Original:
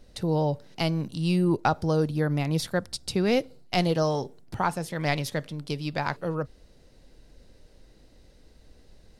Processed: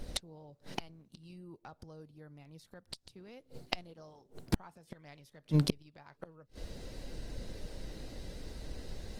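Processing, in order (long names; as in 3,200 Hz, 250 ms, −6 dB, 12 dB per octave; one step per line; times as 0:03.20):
gate with flip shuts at −25 dBFS, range −38 dB
level +10.5 dB
Opus 20 kbit/s 48,000 Hz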